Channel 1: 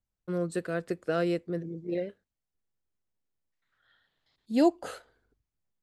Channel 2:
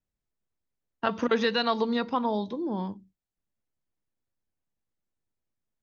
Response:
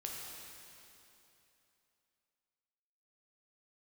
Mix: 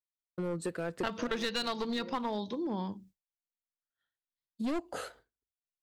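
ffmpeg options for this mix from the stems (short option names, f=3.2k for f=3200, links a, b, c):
-filter_complex "[0:a]asoftclip=type=tanh:threshold=-21dB,adelay=100,volume=2.5dB[a];[1:a]highshelf=f=2.3k:g=8,volume=1dB,asplit=2[b][c];[c]apad=whole_len=261308[d];[a][d]sidechaincompress=threshold=-35dB:ratio=3:attack=16:release=1490[e];[e][b]amix=inputs=2:normalize=0,agate=range=-33dB:threshold=-51dB:ratio=3:detection=peak,aeval=exprs='clip(val(0),-1,0.0562)':c=same,acompressor=threshold=-34dB:ratio=2.5"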